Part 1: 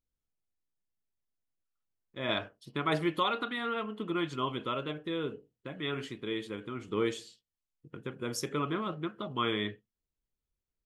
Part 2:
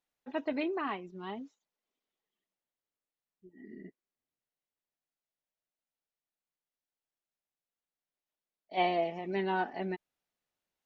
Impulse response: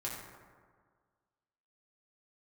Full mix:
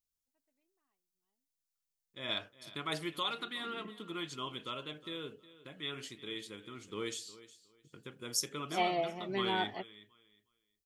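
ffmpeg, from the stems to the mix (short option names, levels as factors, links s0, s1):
-filter_complex "[0:a]crystalizer=i=3:c=0,volume=0.316,asplit=3[s0][s1][s2];[s1]volume=0.133[s3];[1:a]volume=0.708[s4];[s2]apad=whole_len=483211[s5];[s4][s5]sidechaingate=range=0.00398:threshold=0.00158:ratio=16:detection=peak[s6];[s3]aecho=0:1:362|724|1086:1|0.21|0.0441[s7];[s0][s6][s7]amix=inputs=3:normalize=0,equalizer=f=5200:t=o:w=1.5:g=6"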